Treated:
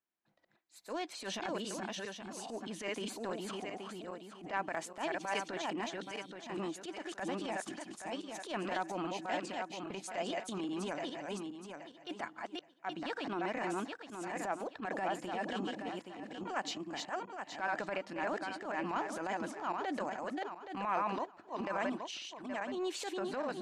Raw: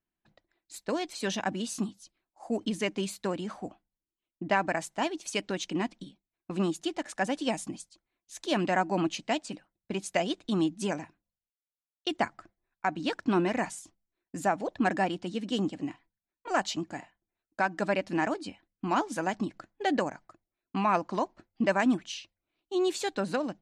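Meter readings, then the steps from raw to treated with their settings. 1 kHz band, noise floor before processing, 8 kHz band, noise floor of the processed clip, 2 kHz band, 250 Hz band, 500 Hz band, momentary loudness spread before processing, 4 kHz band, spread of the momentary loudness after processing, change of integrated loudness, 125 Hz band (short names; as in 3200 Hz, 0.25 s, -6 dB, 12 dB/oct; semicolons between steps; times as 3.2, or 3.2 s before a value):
-6.0 dB, under -85 dBFS, -6.5 dB, -61 dBFS, -6.0 dB, -9.5 dB, -7.0 dB, 13 LU, -6.0 dB, 7 LU, -8.0 dB, -11.5 dB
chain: regenerating reverse delay 0.411 s, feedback 42%, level -3 dB; high shelf 2800 Hz -10.5 dB; compressor 3:1, threshold -29 dBFS, peak gain reduction 8 dB; HPF 710 Hz 6 dB/oct; transient shaper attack -12 dB, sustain +2 dB; gain +2 dB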